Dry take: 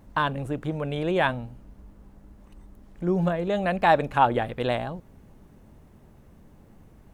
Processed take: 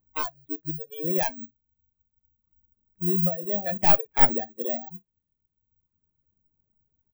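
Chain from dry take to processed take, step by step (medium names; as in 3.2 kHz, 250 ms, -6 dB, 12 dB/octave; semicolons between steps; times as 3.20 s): tracing distortion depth 0.49 ms; tone controls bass +4 dB, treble -5 dB; in parallel at -2 dB: compression, threshold -31 dBFS, peak gain reduction 18 dB; on the sum: bass shelf 110 Hz +6.5 dB; on a send: early reflections 13 ms -14.5 dB, 59 ms -12 dB; on the sum: spectral noise reduction 28 dB; careless resampling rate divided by 2×, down none, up zero stuff; reverb removal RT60 1.3 s; trim -7 dB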